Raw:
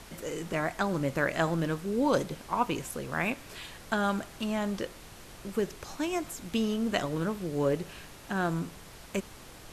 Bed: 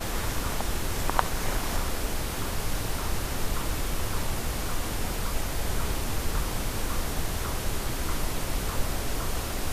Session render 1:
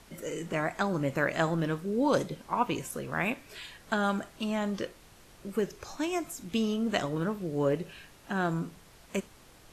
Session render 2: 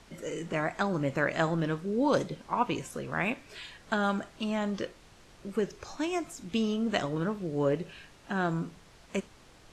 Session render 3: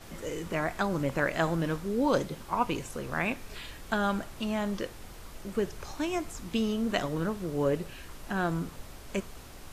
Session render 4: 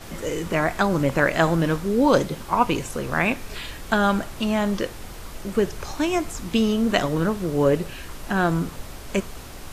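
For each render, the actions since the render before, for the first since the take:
noise print and reduce 7 dB
low-pass 7.7 kHz 12 dB/octave
add bed -17 dB
trim +8.5 dB

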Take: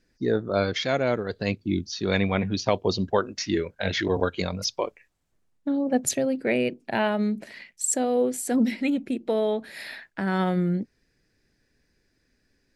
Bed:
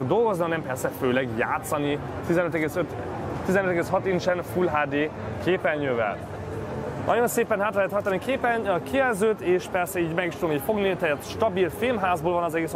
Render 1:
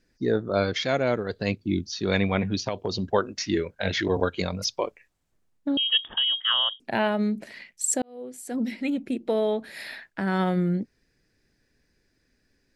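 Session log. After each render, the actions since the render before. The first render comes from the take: 2.61–3.05 s: compression, threshold -23 dBFS; 5.77–6.80 s: frequency inversion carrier 3.5 kHz; 8.02–9.18 s: fade in linear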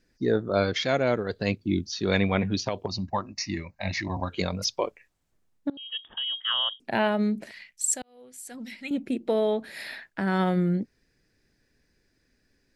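2.86–4.30 s: static phaser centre 2.2 kHz, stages 8; 5.70–6.98 s: fade in, from -23.5 dB; 7.51–8.91 s: peaking EQ 340 Hz -14.5 dB 2.7 oct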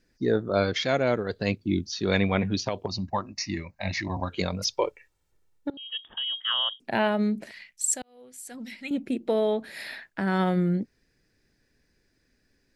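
4.70–5.74 s: comb 2.2 ms, depth 57%; 6.31–6.81 s: high-pass 95 Hz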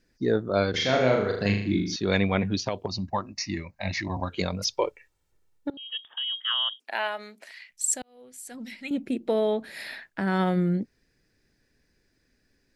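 0.70–1.96 s: flutter echo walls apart 6.7 m, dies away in 0.64 s; 6.05–7.70 s: high-pass 890 Hz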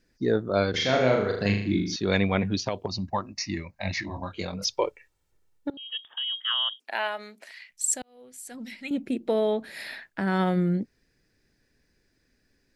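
4.01–4.63 s: detune thickener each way 36 cents -> 18 cents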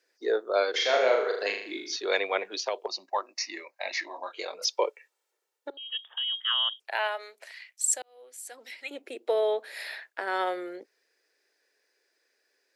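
steep high-pass 400 Hz 36 dB/octave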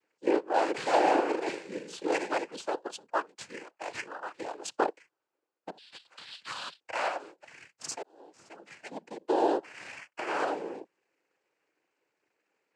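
median filter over 15 samples; noise-vocoded speech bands 8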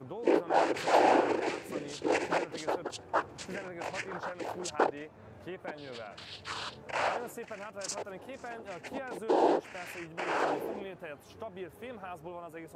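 add bed -19.5 dB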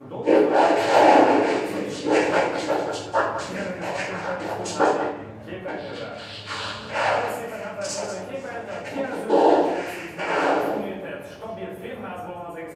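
delay 192 ms -10.5 dB; simulated room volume 130 m³, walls mixed, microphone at 2.3 m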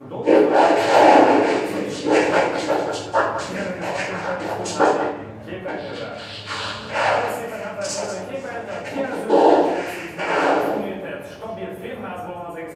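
trim +3 dB; peak limiter -1 dBFS, peak gain reduction 1 dB

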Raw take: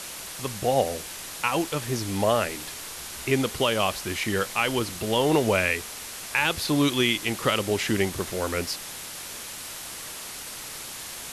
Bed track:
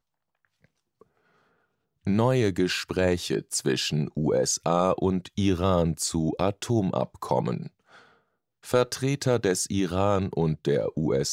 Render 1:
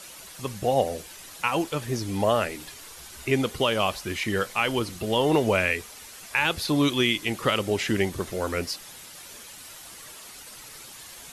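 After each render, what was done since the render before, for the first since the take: noise reduction 9 dB, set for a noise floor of -38 dBFS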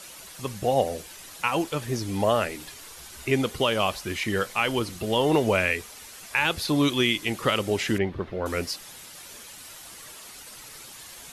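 7.98–8.46 s: distance through air 360 m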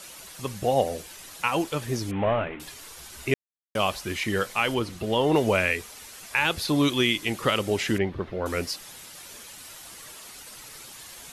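2.11–2.60 s: CVSD coder 16 kbps; 3.34–3.75 s: mute; 4.74–5.36 s: treble shelf 5.1 kHz -7.5 dB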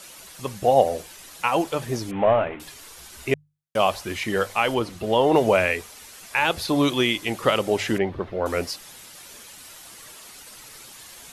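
hum notches 50/100/150 Hz; dynamic bell 690 Hz, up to +7 dB, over -38 dBFS, Q 1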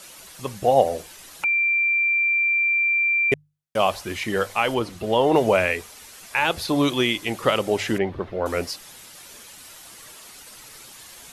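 1.44–3.32 s: bleep 2.36 kHz -17.5 dBFS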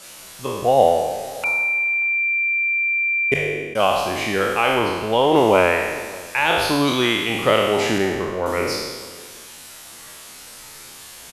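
spectral sustain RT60 1.42 s; echo from a far wall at 100 m, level -22 dB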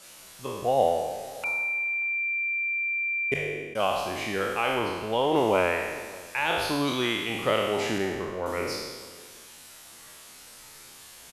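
trim -8 dB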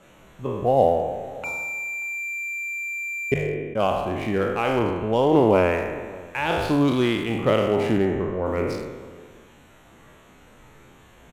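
local Wiener filter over 9 samples; bass shelf 490 Hz +11.5 dB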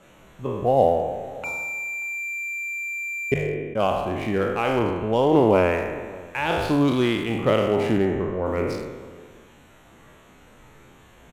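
no audible change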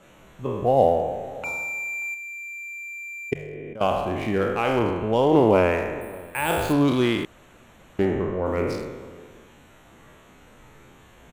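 2.14–3.81 s: level held to a coarse grid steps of 18 dB; 6.01–6.73 s: careless resampling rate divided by 4×, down filtered, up hold; 7.25–7.99 s: room tone

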